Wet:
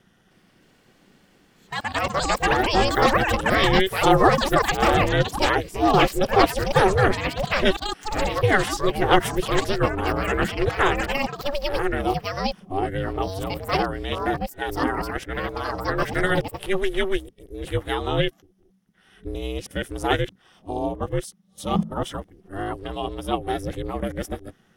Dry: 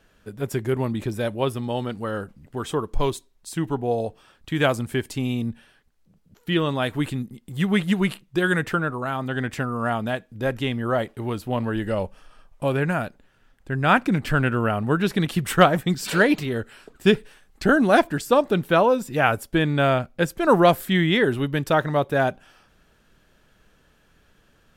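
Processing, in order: reverse the whole clip; rippled EQ curve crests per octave 1.2, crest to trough 7 dB; ring modulator 190 Hz; ever faster or slower copies 312 ms, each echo +7 st, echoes 2; trim +1 dB

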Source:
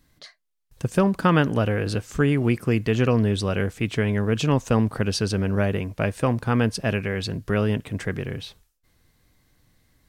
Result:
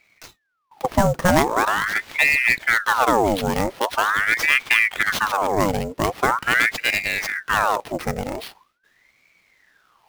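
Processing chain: sample-rate reducer 7.4 kHz, jitter 20%; ring modulator with a swept carrier 1.3 kHz, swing 75%, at 0.43 Hz; trim +5 dB

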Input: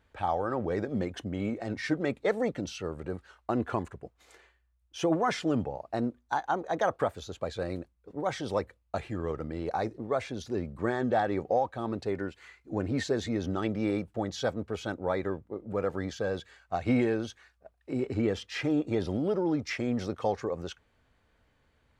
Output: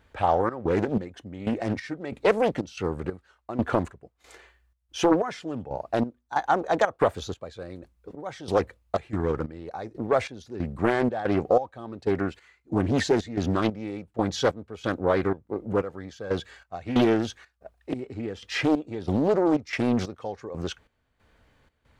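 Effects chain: trance gate "xxx.xx...xx.." 92 bpm -12 dB; loudspeaker Doppler distortion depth 0.73 ms; trim +7 dB

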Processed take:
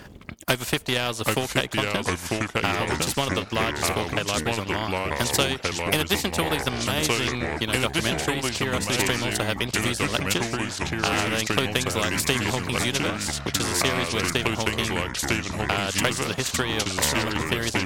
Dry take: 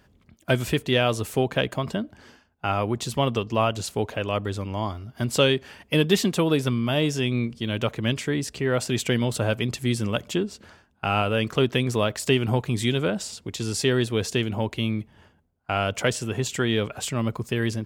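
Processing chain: Chebyshev shaper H 2 -17 dB, 4 -23 dB, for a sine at -5.5 dBFS; in parallel at +0.5 dB: compression, threshold -35 dBFS, peak gain reduction 19.5 dB; on the sum: transient shaper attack +8 dB, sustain -10 dB; ever faster or slower copies 688 ms, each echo -3 st, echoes 3; spectrum-flattening compressor 2:1; trim -5 dB

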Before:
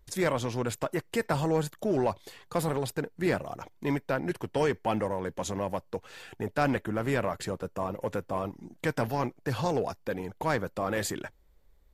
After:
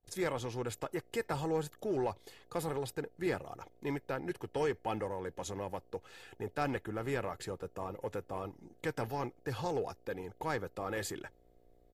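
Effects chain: mains buzz 60 Hz, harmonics 12, -61 dBFS 0 dB/octave; gate with hold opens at -48 dBFS; comb 2.4 ms, depth 36%; trim -7.5 dB

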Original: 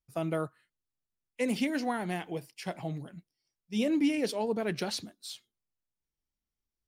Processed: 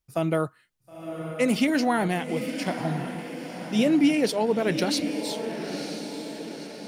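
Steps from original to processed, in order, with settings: echo that smears into a reverb 972 ms, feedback 51%, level -8 dB; 1.68–2.08 s: level flattener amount 50%; trim +7 dB

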